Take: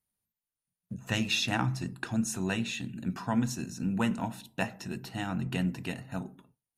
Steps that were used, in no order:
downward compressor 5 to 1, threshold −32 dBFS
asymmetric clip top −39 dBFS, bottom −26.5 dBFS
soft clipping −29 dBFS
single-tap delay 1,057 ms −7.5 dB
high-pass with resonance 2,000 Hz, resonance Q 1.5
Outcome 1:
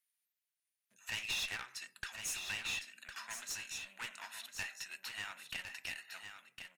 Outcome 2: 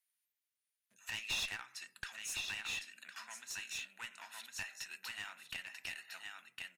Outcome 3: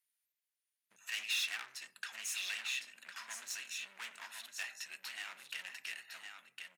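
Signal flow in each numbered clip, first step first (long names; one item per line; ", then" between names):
soft clipping, then high-pass with resonance, then downward compressor, then asymmetric clip, then single-tap delay
single-tap delay, then downward compressor, then soft clipping, then high-pass with resonance, then asymmetric clip
soft clipping, then single-tap delay, then asymmetric clip, then downward compressor, then high-pass with resonance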